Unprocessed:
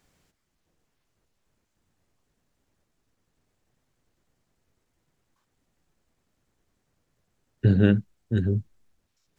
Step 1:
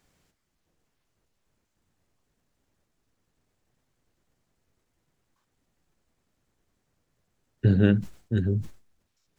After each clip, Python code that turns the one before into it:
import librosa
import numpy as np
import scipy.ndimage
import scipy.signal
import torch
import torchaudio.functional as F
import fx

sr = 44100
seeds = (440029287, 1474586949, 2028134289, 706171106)

y = fx.sustainer(x, sr, db_per_s=140.0)
y = F.gain(torch.from_numpy(y), -1.0).numpy()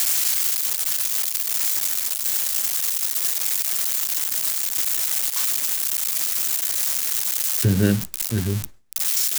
y = x + 0.5 * 10.0 ** (-13.5 / 20.0) * np.diff(np.sign(x), prepend=np.sign(x[:1]))
y = F.gain(torch.from_numpy(y), 1.5).numpy()